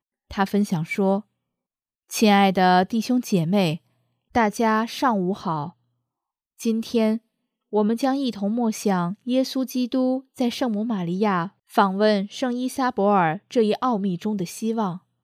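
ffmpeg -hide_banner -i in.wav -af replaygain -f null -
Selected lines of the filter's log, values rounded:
track_gain = +2.6 dB
track_peak = 0.451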